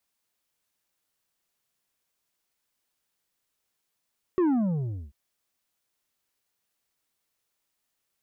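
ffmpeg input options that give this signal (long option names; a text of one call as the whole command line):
ffmpeg -f lavfi -i "aevalsrc='0.0944*clip((0.74-t)/0.68,0,1)*tanh(2.11*sin(2*PI*380*0.74/log(65/380)*(exp(log(65/380)*t/0.74)-1)))/tanh(2.11)':duration=0.74:sample_rate=44100" out.wav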